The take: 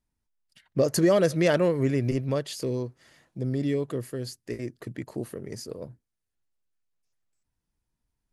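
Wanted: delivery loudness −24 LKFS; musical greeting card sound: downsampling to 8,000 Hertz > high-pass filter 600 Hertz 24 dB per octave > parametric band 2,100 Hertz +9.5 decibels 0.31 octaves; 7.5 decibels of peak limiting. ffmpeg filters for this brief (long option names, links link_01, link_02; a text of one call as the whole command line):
ffmpeg -i in.wav -af "alimiter=limit=-18dB:level=0:latency=1,aresample=8000,aresample=44100,highpass=frequency=600:width=0.5412,highpass=frequency=600:width=1.3066,equalizer=frequency=2100:width_type=o:width=0.31:gain=9.5,volume=13.5dB" out.wav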